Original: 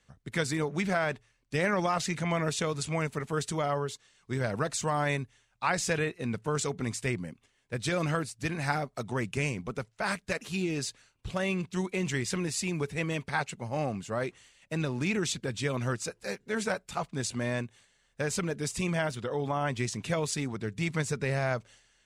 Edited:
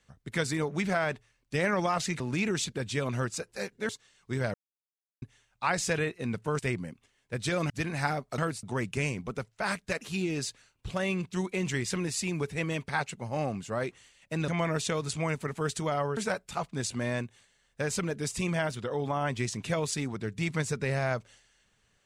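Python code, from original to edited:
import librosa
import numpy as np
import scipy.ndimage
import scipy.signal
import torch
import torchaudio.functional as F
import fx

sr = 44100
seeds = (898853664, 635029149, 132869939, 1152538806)

y = fx.edit(x, sr, fx.swap(start_s=2.2, length_s=1.69, other_s=14.88, other_length_s=1.69),
    fx.silence(start_s=4.54, length_s=0.68),
    fx.cut(start_s=6.59, length_s=0.4),
    fx.move(start_s=8.1, length_s=0.25, to_s=9.03), tone=tone)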